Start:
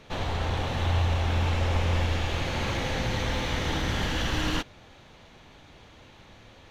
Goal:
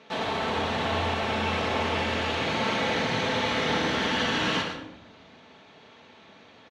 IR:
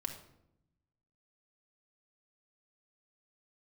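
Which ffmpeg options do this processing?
-filter_complex "[0:a]asplit=2[link_01][link_02];[link_02]acrusher=bits=5:mix=0:aa=0.000001,volume=-6dB[link_03];[link_01][link_03]amix=inputs=2:normalize=0,highpass=230,lowpass=5000,aecho=1:1:112|142:0.355|0.15[link_04];[1:a]atrim=start_sample=2205,asetrate=36162,aresample=44100[link_05];[link_04][link_05]afir=irnorm=-1:irlink=0"

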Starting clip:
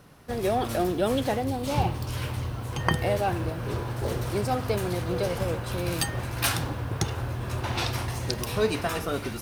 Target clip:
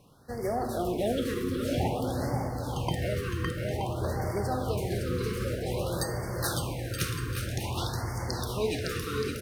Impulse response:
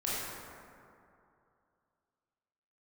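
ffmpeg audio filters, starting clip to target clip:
-filter_complex "[0:a]aecho=1:1:560|924|1161|1314|1414:0.631|0.398|0.251|0.158|0.1,asplit=2[link_01][link_02];[1:a]atrim=start_sample=2205,asetrate=48510,aresample=44100[link_03];[link_02][link_03]afir=irnorm=-1:irlink=0,volume=-9dB[link_04];[link_01][link_04]amix=inputs=2:normalize=0,afftfilt=real='re*(1-between(b*sr/1024,710*pow(3200/710,0.5+0.5*sin(2*PI*0.52*pts/sr))/1.41,710*pow(3200/710,0.5+0.5*sin(2*PI*0.52*pts/sr))*1.41))':imag='im*(1-between(b*sr/1024,710*pow(3200/710,0.5+0.5*sin(2*PI*0.52*pts/sr))/1.41,710*pow(3200/710,0.5+0.5*sin(2*PI*0.52*pts/sr))*1.41))':win_size=1024:overlap=0.75,volume=-7.5dB"

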